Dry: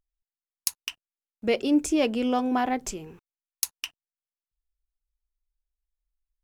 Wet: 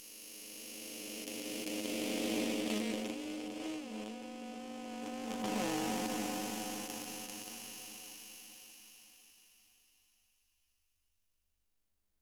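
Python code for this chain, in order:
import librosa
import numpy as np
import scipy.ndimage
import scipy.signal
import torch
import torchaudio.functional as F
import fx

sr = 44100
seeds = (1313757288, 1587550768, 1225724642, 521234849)

p1 = fx.spec_blur(x, sr, span_ms=1430.0)
p2 = fx.high_shelf(p1, sr, hz=2100.0, db=8.5)
p3 = fx.over_compress(p2, sr, threshold_db=-36.0, ratio=-0.5)
p4 = fx.stretch_grains(p3, sr, factor=1.9, grain_ms=40.0)
p5 = p4 + fx.echo_feedback(p4, sr, ms=575, feedback_pct=52, wet_db=-17.5, dry=0)
y = fx.doppler_dist(p5, sr, depth_ms=0.19)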